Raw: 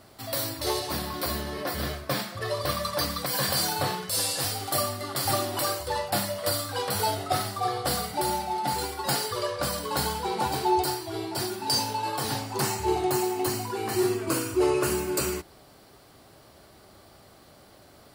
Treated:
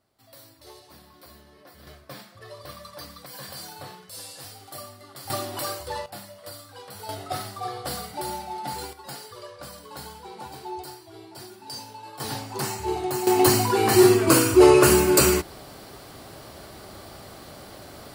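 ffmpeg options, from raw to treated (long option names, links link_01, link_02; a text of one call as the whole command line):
ffmpeg -i in.wav -af "asetnsamples=nb_out_samples=441:pad=0,asendcmd='1.87 volume volume -13dB;5.3 volume volume -3dB;6.06 volume volume -13.5dB;7.09 volume volume -4.5dB;8.93 volume volume -12dB;12.2 volume volume -2dB;13.27 volume volume 10dB',volume=-19.5dB" out.wav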